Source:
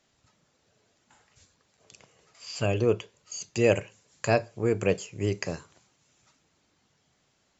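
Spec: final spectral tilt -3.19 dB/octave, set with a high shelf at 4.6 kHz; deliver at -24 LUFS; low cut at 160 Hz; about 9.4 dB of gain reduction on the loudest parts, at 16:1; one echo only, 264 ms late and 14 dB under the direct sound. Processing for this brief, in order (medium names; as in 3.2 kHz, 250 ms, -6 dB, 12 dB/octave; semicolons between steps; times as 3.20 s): high-pass 160 Hz; treble shelf 4.6 kHz +8.5 dB; compression 16:1, threshold -26 dBFS; delay 264 ms -14 dB; trim +9.5 dB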